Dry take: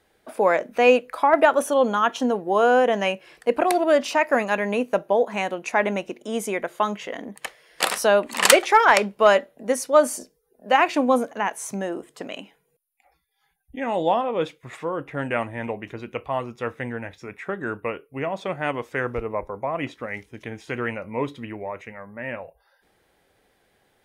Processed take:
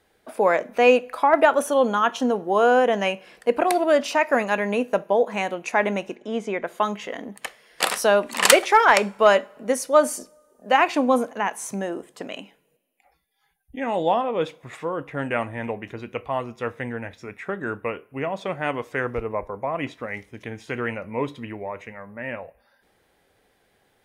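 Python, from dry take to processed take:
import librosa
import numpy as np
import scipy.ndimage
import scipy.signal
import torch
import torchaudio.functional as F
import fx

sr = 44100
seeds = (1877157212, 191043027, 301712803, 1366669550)

y = fx.air_absorb(x, sr, metres=150.0, at=(6.15, 6.67))
y = fx.rev_double_slope(y, sr, seeds[0], early_s=0.41, late_s=2.0, knee_db=-20, drr_db=18.5)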